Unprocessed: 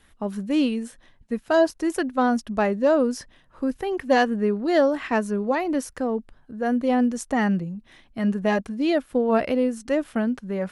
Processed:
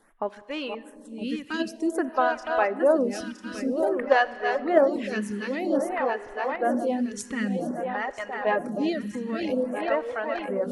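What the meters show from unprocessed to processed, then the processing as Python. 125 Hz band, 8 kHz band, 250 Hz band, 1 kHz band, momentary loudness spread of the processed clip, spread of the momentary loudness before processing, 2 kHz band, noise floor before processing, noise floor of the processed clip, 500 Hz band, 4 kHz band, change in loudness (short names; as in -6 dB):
n/a, -3.5 dB, -5.5 dB, -0.5 dB, 11 LU, 11 LU, 0.0 dB, -58 dBFS, -48 dBFS, -1.5 dB, -2.5 dB, -3.0 dB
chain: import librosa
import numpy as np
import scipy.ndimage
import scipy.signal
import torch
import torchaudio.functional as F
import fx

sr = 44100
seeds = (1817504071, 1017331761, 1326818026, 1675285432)

p1 = fx.reverse_delay_fb(x, sr, ms=482, feedback_pct=71, wet_db=-6.0)
p2 = fx.level_steps(p1, sr, step_db=15)
p3 = p1 + (p2 * 10.0 ** (3.0 / 20.0))
p4 = fx.low_shelf(p3, sr, hz=310.0, db=-10.5)
p5 = p4 + fx.echo_single(p4, sr, ms=621, db=-21.0, dry=0)
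p6 = fx.dereverb_blind(p5, sr, rt60_s=0.96)
p7 = fx.high_shelf(p6, sr, hz=4600.0, db=-9.5)
p8 = fx.rev_schroeder(p7, sr, rt60_s=3.1, comb_ms=30, drr_db=16.0)
y = fx.stagger_phaser(p8, sr, hz=0.52)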